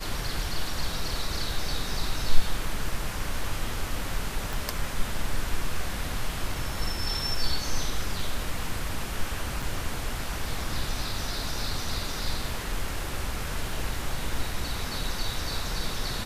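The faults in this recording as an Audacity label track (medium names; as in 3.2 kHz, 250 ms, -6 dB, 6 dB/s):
4.530000	4.530000	pop
9.620000	9.630000	dropout 5.2 ms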